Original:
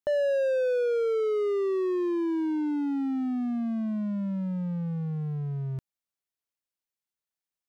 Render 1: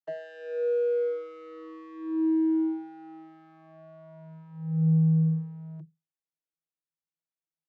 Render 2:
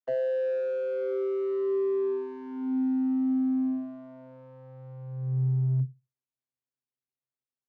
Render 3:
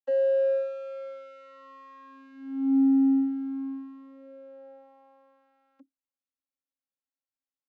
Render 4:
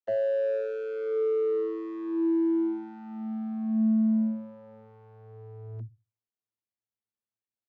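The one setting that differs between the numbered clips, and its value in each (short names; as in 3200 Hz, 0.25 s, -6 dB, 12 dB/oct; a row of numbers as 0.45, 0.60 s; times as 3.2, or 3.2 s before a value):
vocoder, frequency: 160, 130, 270, 110 Hz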